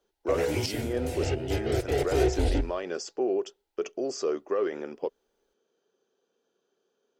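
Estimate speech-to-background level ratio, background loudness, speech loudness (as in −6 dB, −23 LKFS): −3.5 dB, −29.5 LKFS, −33.0 LKFS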